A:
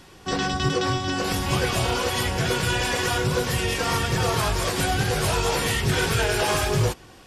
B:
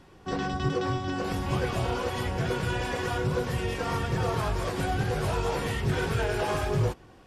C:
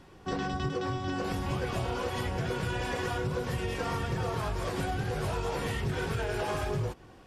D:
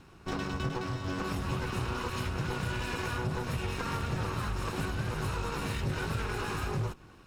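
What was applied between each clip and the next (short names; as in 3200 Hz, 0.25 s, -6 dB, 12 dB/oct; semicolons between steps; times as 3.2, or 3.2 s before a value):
high shelf 2300 Hz -12 dB; gain -3.5 dB
compressor, threshold -28 dBFS, peak gain reduction 7 dB
minimum comb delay 0.74 ms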